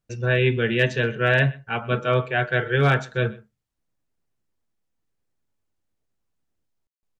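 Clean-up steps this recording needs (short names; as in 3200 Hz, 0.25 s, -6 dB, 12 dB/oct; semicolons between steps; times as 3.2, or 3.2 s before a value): clip repair -9 dBFS; room tone fill 6.87–7.03; inverse comb 0.125 s -22.5 dB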